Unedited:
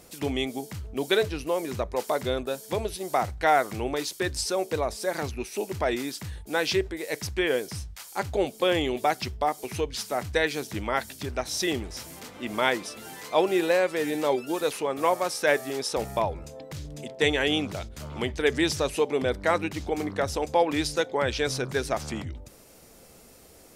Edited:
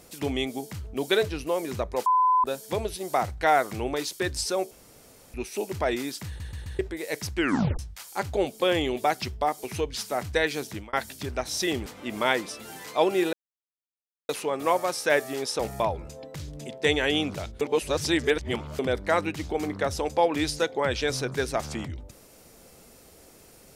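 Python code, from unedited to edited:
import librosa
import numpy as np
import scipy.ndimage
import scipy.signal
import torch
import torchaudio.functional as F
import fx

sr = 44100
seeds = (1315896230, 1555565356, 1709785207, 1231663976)

y = fx.edit(x, sr, fx.bleep(start_s=2.06, length_s=0.38, hz=1010.0, db=-17.5),
    fx.room_tone_fill(start_s=4.71, length_s=0.63),
    fx.stutter_over(start_s=6.27, slice_s=0.13, count=4),
    fx.tape_stop(start_s=7.37, length_s=0.42),
    fx.fade_out_span(start_s=10.68, length_s=0.25),
    fx.cut(start_s=11.86, length_s=0.37),
    fx.silence(start_s=13.7, length_s=0.96),
    fx.reverse_span(start_s=17.98, length_s=1.18), tone=tone)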